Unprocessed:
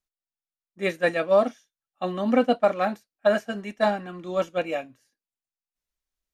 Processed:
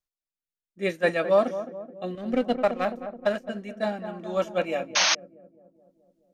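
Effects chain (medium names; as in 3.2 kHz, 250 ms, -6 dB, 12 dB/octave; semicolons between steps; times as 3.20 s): 2.15–3.49 s: power-law waveshaper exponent 1.4; filtered feedback delay 213 ms, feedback 64%, low-pass 1.1 kHz, level -10 dB; rotary cabinet horn 0.6 Hz; 4.95–5.15 s: painted sound noise 570–6600 Hz -21 dBFS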